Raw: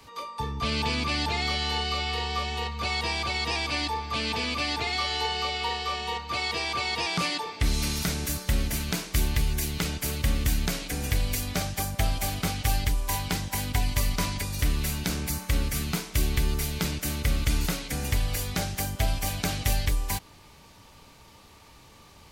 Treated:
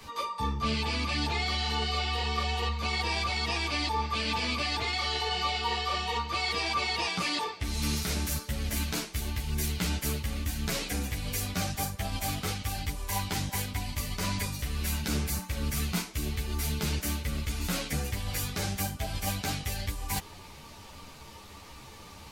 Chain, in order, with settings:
reversed playback
downward compressor, threshold −32 dBFS, peak gain reduction 12.5 dB
reversed playback
string-ensemble chorus
level +7.5 dB

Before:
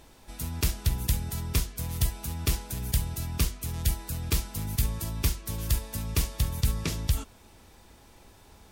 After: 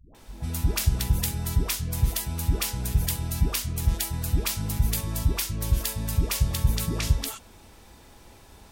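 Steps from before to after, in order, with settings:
all-pass dispersion highs, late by 149 ms, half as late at 410 Hz
level +3.5 dB

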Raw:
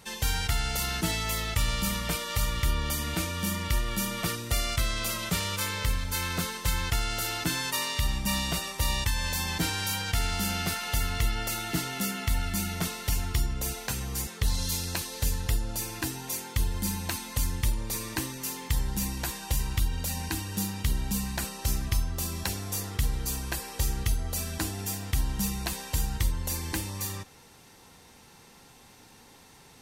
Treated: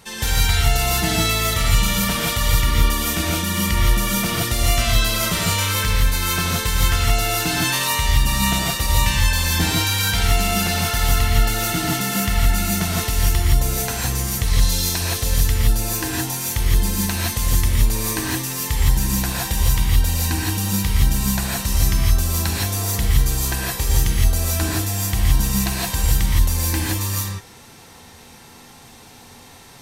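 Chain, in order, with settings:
reverb whose tail is shaped and stops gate 190 ms rising, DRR −4 dB
level +4.5 dB

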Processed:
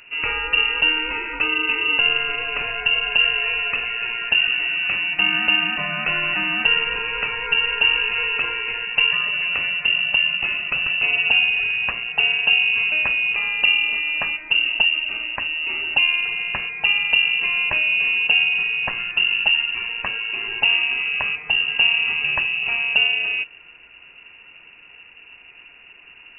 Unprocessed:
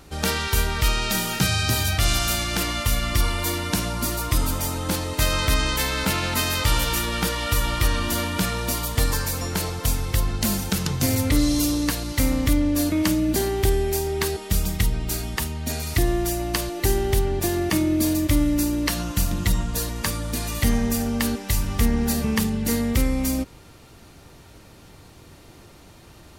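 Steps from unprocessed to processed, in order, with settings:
parametric band 85 Hz +7 dB 0.29 octaves
voice inversion scrambler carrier 2,800 Hz

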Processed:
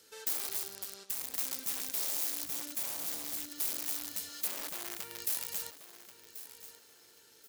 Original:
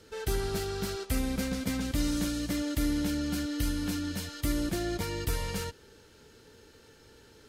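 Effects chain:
0:04.47–0:05.19: running median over 9 samples
wrap-around overflow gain 26.5 dB
0:02.43–0:03.49: low-shelf EQ 210 Hz +11.5 dB
downward compressor, threshold −35 dBFS, peak gain reduction 9 dB
high-pass filter 62 Hz
RIAA equalisation recording
repeating echo 1,084 ms, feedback 27%, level −13.5 dB
0:00.68–0:01.34: amplitude modulation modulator 200 Hz, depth 75%
level −8.5 dB

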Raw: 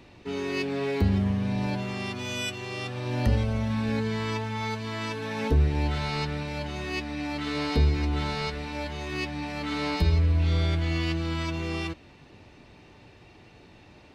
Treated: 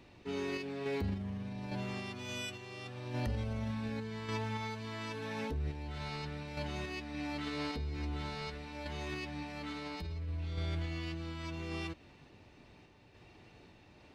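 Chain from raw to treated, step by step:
brickwall limiter −22 dBFS, peak gain reduction 9.5 dB
sample-and-hold tremolo
level −5.5 dB

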